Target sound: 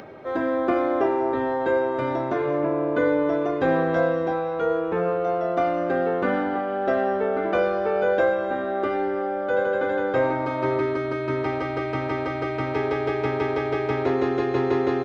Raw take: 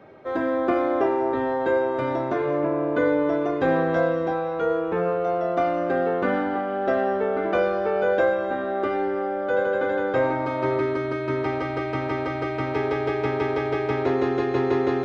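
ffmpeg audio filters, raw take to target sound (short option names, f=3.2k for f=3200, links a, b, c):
-filter_complex "[0:a]acompressor=mode=upward:threshold=-35dB:ratio=2.5,asplit=2[a][b];[b]aecho=0:1:366:0.0708[c];[a][c]amix=inputs=2:normalize=0"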